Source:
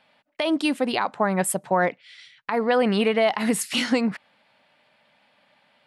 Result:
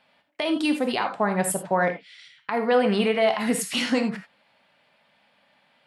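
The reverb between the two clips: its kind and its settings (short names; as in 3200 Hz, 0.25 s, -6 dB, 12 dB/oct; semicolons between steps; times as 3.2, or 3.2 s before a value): non-linear reverb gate 0.11 s flat, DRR 5.5 dB; gain -2 dB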